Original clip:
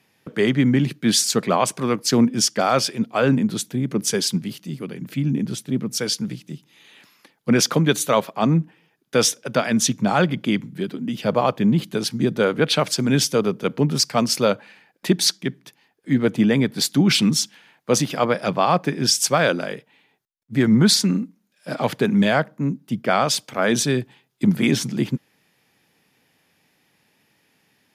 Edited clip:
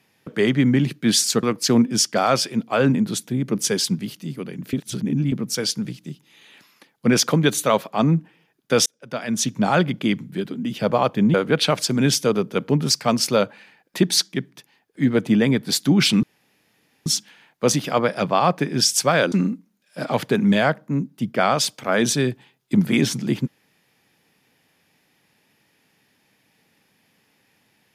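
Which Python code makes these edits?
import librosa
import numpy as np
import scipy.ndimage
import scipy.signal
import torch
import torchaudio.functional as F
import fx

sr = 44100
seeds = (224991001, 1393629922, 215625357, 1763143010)

y = fx.edit(x, sr, fx.cut(start_s=1.43, length_s=0.43),
    fx.reverse_span(start_s=5.16, length_s=0.59),
    fx.fade_in_span(start_s=9.29, length_s=0.78),
    fx.cut(start_s=11.77, length_s=0.66),
    fx.insert_room_tone(at_s=17.32, length_s=0.83),
    fx.cut(start_s=19.58, length_s=1.44), tone=tone)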